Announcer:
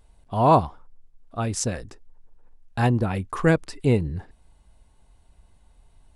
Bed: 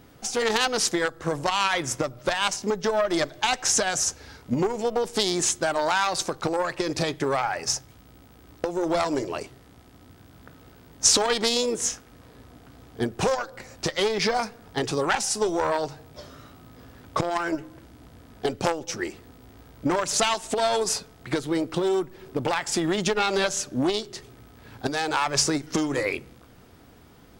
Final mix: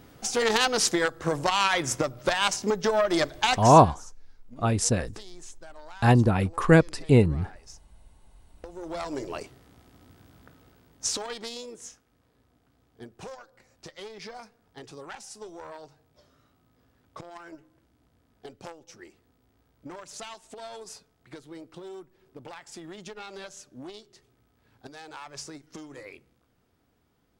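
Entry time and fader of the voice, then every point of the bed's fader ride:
3.25 s, +2.0 dB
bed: 0:03.54 0 dB
0:03.91 −23 dB
0:08.25 −23 dB
0:09.33 −4 dB
0:10.29 −4 dB
0:11.92 −18 dB

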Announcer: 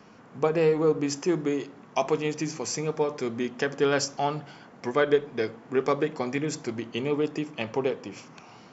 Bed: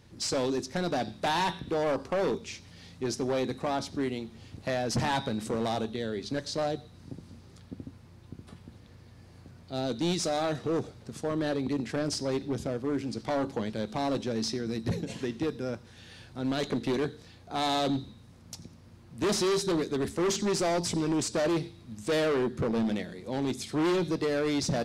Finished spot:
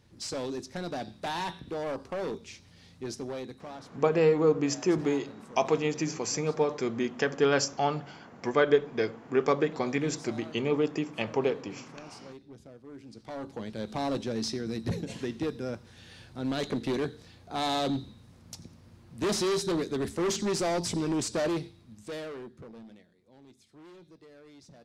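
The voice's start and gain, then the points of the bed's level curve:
3.60 s, −0.5 dB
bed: 0:03.16 −5.5 dB
0:04.05 −17.5 dB
0:12.84 −17.5 dB
0:13.93 −1 dB
0:21.44 −1 dB
0:23.16 −25 dB

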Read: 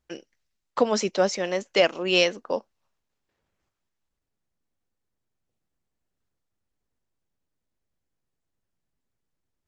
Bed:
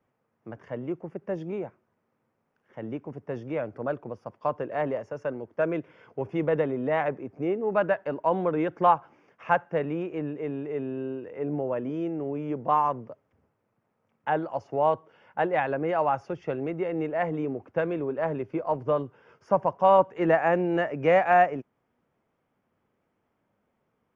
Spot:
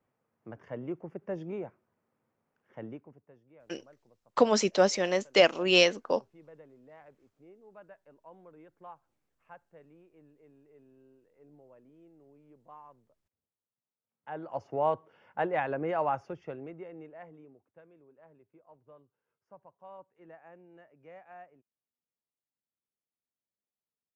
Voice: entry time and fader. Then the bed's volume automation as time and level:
3.60 s, −1.0 dB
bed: 0:02.82 −4.5 dB
0:03.40 −28 dB
0:14.02 −28 dB
0:14.55 −4.5 dB
0:16.15 −4.5 dB
0:17.83 −30.5 dB

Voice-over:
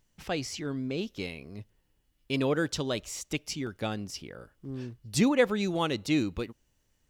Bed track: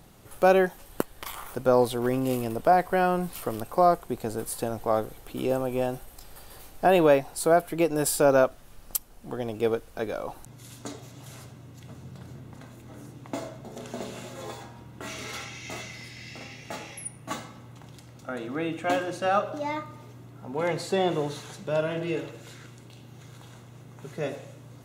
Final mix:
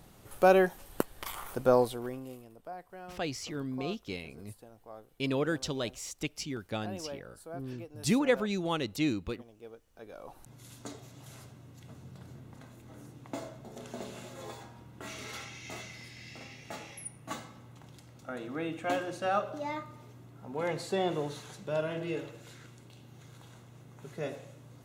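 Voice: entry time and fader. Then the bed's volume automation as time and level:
2.90 s, −3.0 dB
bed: 0:01.73 −2.5 dB
0:02.49 −23.5 dB
0:09.82 −23.5 dB
0:10.52 −5.5 dB

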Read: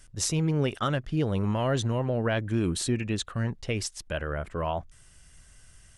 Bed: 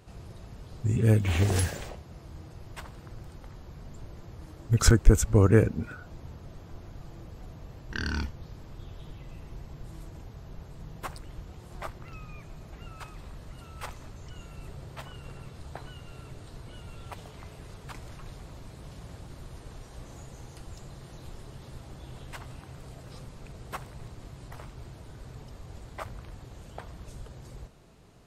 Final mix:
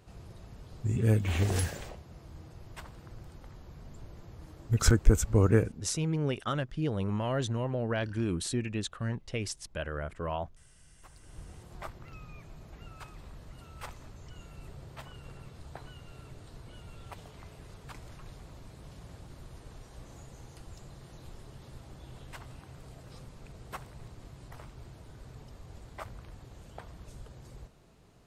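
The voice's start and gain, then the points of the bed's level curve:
5.65 s, −4.5 dB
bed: 0:05.55 −3.5 dB
0:05.98 −22.5 dB
0:11.00 −22.5 dB
0:11.40 −4 dB

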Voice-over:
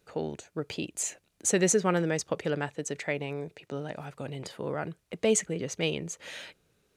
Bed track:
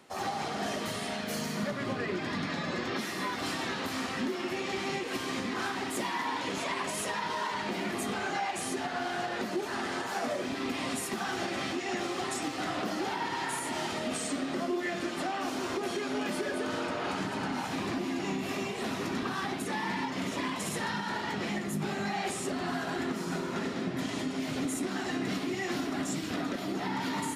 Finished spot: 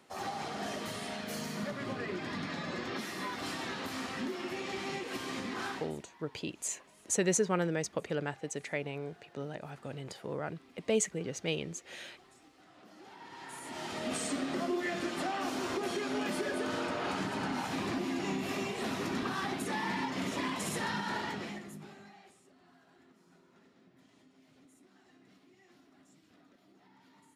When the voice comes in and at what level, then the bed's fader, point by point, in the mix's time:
5.65 s, −4.5 dB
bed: 0:05.74 −4.5 dB
0:06.03 −27 dB
0:12.68 −27 dB
0:14.13 −1.5 dB
0:21.21 −1.5 dB
0:22.44 −30 dB

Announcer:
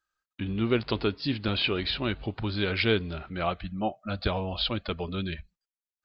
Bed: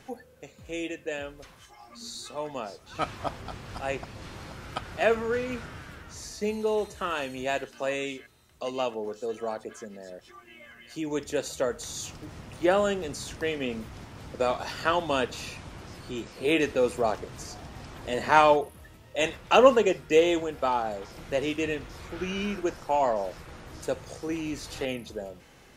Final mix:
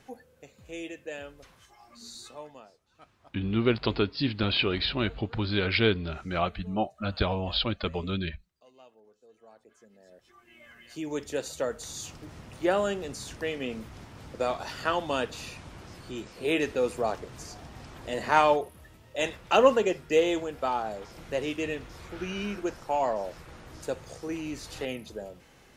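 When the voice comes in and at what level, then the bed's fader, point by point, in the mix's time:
2.95 s, +1.0 dB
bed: 0:02.27 −5 dB
0:02.98 −25.5 dB
0:09.29 −25.5 dB
0:10.72 −2.5 dB

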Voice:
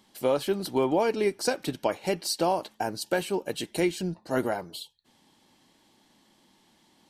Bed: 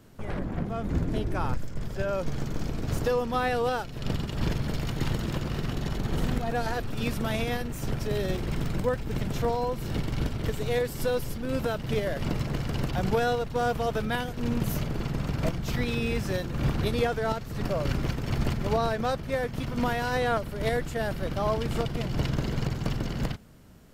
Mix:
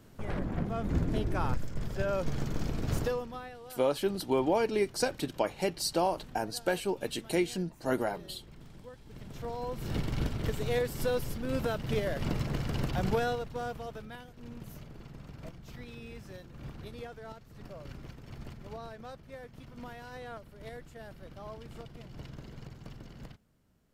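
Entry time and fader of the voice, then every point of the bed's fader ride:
3.55 s, −3.0 dB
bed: 0:02.99 −2 dB
0:03.59 −22 dB
0:08.94 −22 dB
0:09.91 −3 dB
0:13.10 −3 dB
0:14.19 −17.5 dB

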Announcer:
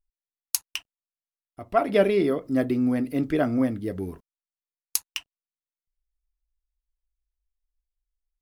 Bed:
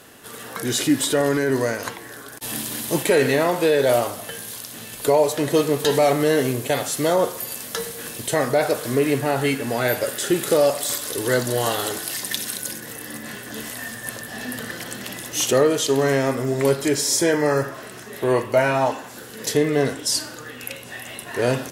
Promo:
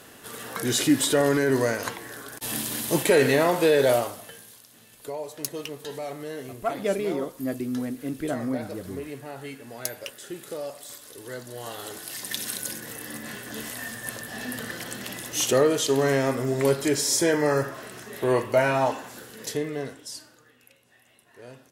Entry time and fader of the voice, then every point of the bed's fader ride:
4.90 s, −6.0 dB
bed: 0:03.85 −1.5 dB
0:04.62 −17 dB
0:11.49 −17 dB
0:12.49 −3 dB
0:19.10 −3 dB
0:20.73 −24.5 dB

